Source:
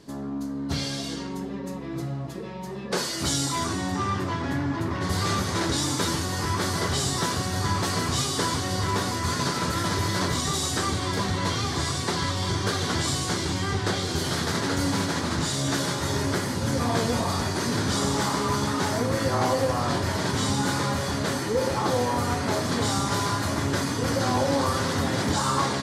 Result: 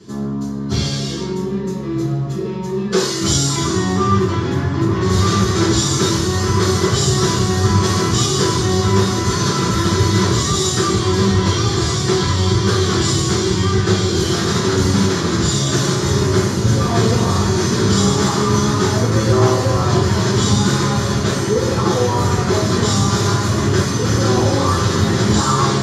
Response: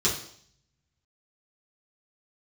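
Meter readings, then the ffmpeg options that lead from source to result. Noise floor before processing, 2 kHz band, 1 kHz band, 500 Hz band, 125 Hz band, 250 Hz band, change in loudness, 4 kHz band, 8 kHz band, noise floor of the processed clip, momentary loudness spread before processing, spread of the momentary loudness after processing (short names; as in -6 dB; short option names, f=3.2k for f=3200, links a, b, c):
-33 dBFS, +5.5 dB, +6.5 dB, +10.5 dB, +12.5 dB, +10.5 dB, +9.5 dB, +8.0 dB, +8.5 dB, -22 dBFS, 4 LU, 4 LU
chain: -filter_complex "[1:a]atrim=start_sample=2205[a];[0:a][a]afir=irnorm=-1:irlink=0,volume=-5dB"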